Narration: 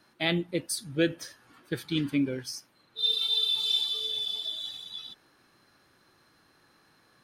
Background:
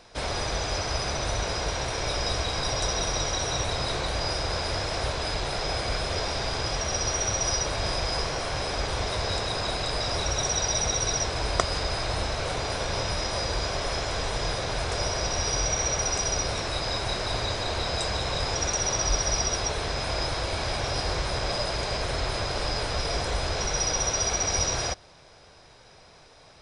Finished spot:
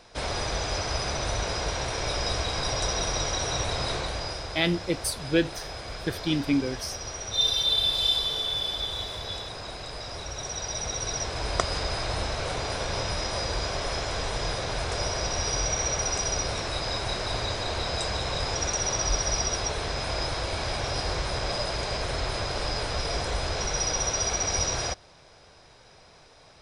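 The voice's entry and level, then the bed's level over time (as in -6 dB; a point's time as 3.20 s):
4.35 s, +2.5 dB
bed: 3.92 s -0.5 dB
4.61 s -9 dB
10.28 s -9 dB
11.66 s -1 dB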